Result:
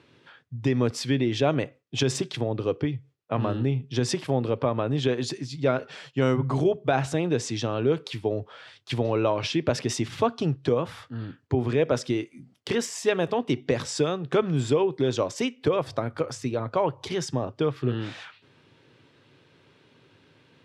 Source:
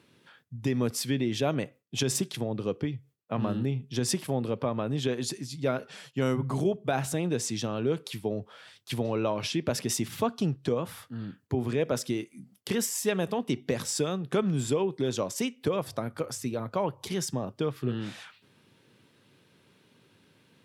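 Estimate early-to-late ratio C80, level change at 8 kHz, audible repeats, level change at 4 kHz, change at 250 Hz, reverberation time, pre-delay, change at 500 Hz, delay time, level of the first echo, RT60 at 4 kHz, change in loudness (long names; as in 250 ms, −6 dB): no reverb audible, −3.0 dB, no echo audible, +2.5 dB, +2.5 dB, no reverb audible, no reverb audible, +5.0 dB, no echo audible, no echo audible, no reverb audible, +4.0 dB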